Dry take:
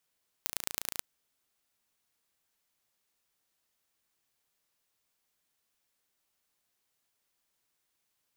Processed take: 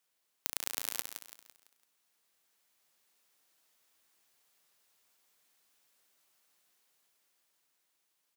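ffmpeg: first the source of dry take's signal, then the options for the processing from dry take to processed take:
-f lavfi -i "aevalsrc='0.668*eq(mod(n,1569),0)*(0.5+0.5*eq(mod(n,4707),0))':d=0.55:s=44100"
-filter_complex "[0:a]highpass=f=270:p=1,dynaudnorm=f=370:g=9:m=2.11,asplit=2[s0][s1];[s1]aecho=0:1:168|336|504|672|840:0.398|0.163|0.0669|0.0274|0.0112[s2];[s0][s2]amix=inputs=2:normalize=0"

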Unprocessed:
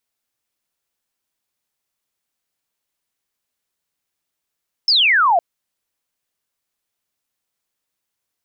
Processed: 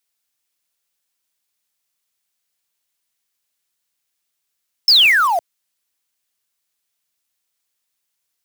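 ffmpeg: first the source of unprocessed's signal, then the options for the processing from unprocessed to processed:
-f lavfi -i "aevalsrc='0.282*clip(t/0.002,0,1)*clip((0.51-t)/0.002,0,1)*sin(2*PI*5400*0.51/log(650/5400)*(exp(log(650/5400)*t/0.51)-1))':d=0.51:s=44100"
-filter_complex "[0:a]tiltshelf=f=1500:g=-5,acrossover=split=190[s0][s1];[s1]acrusher=bits=4:mode=log:mix=0:aa=0.000001[s2];[s0][s2]amix=inputs=2:normalize=0"

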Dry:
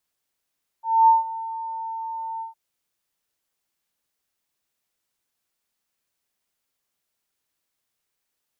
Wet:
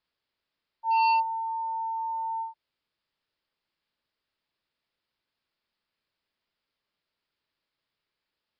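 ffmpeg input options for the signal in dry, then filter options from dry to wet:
-f lavfi -i "aevalsrc='0.316*sin(2*PI*901*t)':d=1.71:s=44100,afade=t=in:d=0.248,afade=t=out:st=0.248:d=0.156:silence=0.126,afade=t=out:st=1.58:d=0.13"
-af "bandreject=f=750:w=12,aresample=11025,asoftclip=type=hard:threshold=0.0891,aresample=44100"

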